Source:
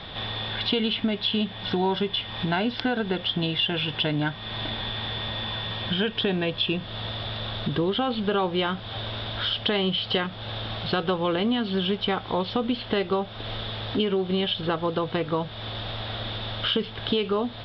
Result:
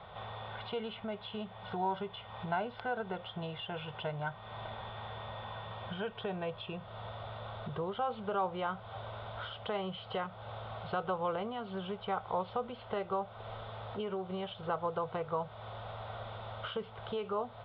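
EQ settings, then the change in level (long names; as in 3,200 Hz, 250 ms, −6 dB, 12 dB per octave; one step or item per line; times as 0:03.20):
high-pass filter 100 Hz 6 dB per octave
low-pass with resonance 1,600 Hz, resonance Q 7.8
phaser with its sweep stopped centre 690 Hz, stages 4
−7.0 dB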